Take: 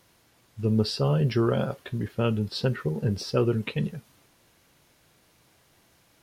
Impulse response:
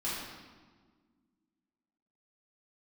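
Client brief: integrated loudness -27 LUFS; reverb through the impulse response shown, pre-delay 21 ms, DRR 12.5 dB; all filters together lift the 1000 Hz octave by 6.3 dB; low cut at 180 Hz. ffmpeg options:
-filter_complex "[0:a]highpass=180,equalizer=f=1k:t=o:g=8.5,asplit=2[a][b];[1:a]atrim=start_sample=2205,adelay=21[c];[b][c]afir=irnorm=-1:irlink=0,volume=-18dB[d];[a][d]amix=inputs=2:normalize=0,volume=0.5dB"

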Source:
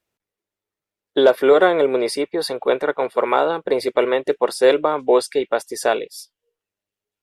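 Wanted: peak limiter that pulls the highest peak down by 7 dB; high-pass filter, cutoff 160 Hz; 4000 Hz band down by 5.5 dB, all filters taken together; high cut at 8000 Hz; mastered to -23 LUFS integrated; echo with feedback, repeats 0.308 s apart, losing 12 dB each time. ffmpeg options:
-af "highpass=160,lowpass=8k,equalizer=f=4k:t=o:g=-6.5,alimiter=limit=-9.5dB:level=0:latency=1,aecho=1:1:308|616|924:0.251|0.0628|0.0157,volume=-2dB"

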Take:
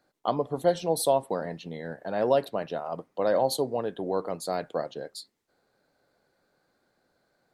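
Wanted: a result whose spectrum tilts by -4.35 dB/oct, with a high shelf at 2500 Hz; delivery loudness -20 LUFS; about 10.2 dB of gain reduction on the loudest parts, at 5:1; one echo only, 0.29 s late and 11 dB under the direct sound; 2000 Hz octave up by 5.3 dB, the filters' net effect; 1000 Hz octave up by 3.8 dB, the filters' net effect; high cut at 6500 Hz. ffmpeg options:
-af "lowpass=6.5k,equalizer=f=1k:t=o:g=5,equalizer=f=2k:t=o:g=8,highshelf=f=2.5k:g=-7,acompressor=threshold=-27dB:ratio=5,aecho=1:1:290:0.282,volume=13.5dB"

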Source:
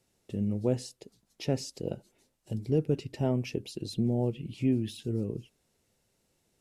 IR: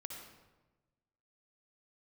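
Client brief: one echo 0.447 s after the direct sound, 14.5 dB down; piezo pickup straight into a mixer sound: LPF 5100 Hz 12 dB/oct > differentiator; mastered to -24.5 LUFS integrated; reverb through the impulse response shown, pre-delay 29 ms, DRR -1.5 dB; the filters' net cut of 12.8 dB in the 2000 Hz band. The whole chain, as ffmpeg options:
-filter_complex "[0:a]equalizer=f=2k:t=o:g=-4.5,aecho=1:1:447:0.188,asplit=2[a][b];[1:a]atrim=start_sample=2205,adelay=29[c];[b][c]afir=irnorm=-1:irlink=0,volume=4.5dB[d];[a][d]amix=inputs=2:normalize=0,lowpass=5.1k,aderivative,volume=26dB"

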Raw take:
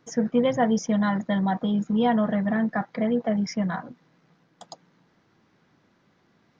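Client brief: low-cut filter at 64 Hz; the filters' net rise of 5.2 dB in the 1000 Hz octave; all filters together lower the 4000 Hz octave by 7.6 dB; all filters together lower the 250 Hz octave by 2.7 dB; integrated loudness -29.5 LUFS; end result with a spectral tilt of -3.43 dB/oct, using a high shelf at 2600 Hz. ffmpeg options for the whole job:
-af "highpass=64,equalizer=f=250:t=o:g=-3.5,equalizer=f=1k:t=o:g=8.5,highshelf=f=2.6k:g=-4,equalizer=f=4k:t=o:g=-8,volume=-5dB"

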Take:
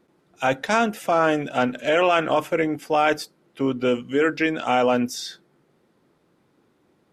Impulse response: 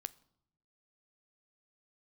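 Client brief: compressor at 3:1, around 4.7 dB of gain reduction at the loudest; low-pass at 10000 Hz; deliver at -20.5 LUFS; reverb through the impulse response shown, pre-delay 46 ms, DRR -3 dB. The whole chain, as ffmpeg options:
-filter_complex "[0:a]lowpass=10k,acompressor=threshold=-21dB:ratio=3,asplit=2[a][b];[1:a]atrim=start_sample=2205,adelay=46[c];[b][c]afir=irnorm=-1:irlink=0,volume=6dB[d];[a][d]amix=inputs=2:normalize=0,volume=1dB"

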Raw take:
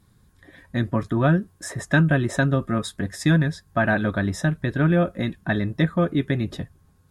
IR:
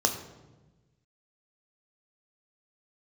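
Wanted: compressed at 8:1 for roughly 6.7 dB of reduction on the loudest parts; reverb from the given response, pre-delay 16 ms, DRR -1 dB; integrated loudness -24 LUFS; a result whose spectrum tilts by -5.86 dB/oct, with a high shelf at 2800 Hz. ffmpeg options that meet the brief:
-filter_complex "[0:a]highshelf=f=2.8k:g=-7.5,acompressor=threshold=-21dB:ratio=8,asplit=2[a][b];[1:a]atrim=start_sample=2205,adelay=16[c];[b][c]afir=irnorm=-1:irlink=0,volume=-9.5dB[d];[a][d]amix=inputs=2:normalize=0,volume=-0.5dB"

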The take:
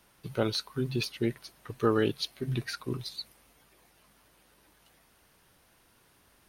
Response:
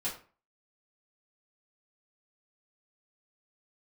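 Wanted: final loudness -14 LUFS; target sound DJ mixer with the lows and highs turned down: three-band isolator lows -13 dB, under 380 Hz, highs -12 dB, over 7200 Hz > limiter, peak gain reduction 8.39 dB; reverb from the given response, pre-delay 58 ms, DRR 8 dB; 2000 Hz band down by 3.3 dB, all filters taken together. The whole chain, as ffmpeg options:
-filter_complex "[0:a]equalizer=f=2k:t=o:g=-4.5,asplit=2[a][b];[1:a]atrim=start_sample=2205,adelay=58[c];[b][c]afir=irnorm=-1:irlink=0,volume=-11.5dB[d];[a][d]amix=inputs=2:normalize=0,acrossover=split=380 7200:gain=0.224 1 0.251[e][f][g];[e][f][g]amix=inputs=3:normalize=0,volume=24.5dB,alimiter=limit=-1.5dB:level=0:latency=1"

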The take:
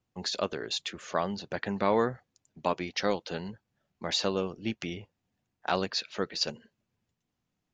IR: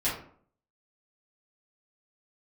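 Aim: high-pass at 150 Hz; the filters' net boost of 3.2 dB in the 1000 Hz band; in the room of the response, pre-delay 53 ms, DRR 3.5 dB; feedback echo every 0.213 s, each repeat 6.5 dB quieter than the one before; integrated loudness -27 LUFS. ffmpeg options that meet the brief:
-filter_complex "[0:a]highpass=150,equalizer=f=1k:t=o:g=4,aecho=1:1:213|426|639|852|1065|1278:0.473|0.222|0.105|0.0491|0.0231|0.0109,asplit=2[a][b];[1:a]atrim=start_sample=2205,adelay=53[c];[b][c]afir=irnorm=-1:irlink=0,volume=-12.5dB[d];[a][d]amix=inputs=2:normalize=0,volume=2dB"

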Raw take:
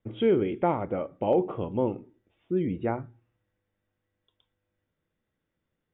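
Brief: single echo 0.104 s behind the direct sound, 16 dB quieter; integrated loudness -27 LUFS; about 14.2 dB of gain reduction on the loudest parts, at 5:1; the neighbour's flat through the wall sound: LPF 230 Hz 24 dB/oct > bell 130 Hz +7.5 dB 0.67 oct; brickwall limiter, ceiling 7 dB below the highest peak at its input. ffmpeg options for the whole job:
-af "acompressor=threshold=-35dB:ratio=5,alimiter=level_in=5.5dB:limit=-24dB:level=0:latency=1,volume=-5.5dB,lowpass=f=230:w=0.5412,lowpass=f=230:w=1.3066,equalizer=f=130:t=o:w=0.67:g=7.5,aecho=1:1:104:0.158,volume=17dB"

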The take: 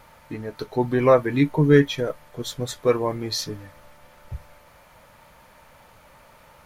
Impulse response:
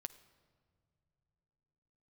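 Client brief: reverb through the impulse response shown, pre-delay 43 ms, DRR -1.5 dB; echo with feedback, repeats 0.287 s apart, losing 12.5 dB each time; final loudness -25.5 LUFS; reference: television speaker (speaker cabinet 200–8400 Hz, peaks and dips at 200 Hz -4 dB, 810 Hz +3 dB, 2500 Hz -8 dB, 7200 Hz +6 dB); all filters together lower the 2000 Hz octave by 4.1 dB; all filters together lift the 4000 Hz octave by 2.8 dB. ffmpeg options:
-filter_complex "[0:a]equalizer=f=2k:t=o:g=-4,equalizer=f=4k:t=o:g=4.5,aecho=1:1:287|574|861:0.237|0.0569|0.0137,asplit=2[a][b];[1:a]atrim=start_sample=2205,adelay=43[c];[b][c]afir=irnorm=-1:irlink=0,volume=5.5dB[d];[a][d]amix=inputs=2:normalize=0,highpass=f=200:w=0.5412,highpass=f=200:w=1.3066,equalizer=f=200:t=q:w=4:g=-4,equalizer=f=810:t=q:w=4:g=3,equalizer=f=2.5k:t=q:w=4:g=-8,equalizer=f=7.2k:t=q:w=4:g=6,lowpass=f=8.4k:w=0.5412,lowpass=f=8.4k:w=1.3066,volume=-6.5dB"

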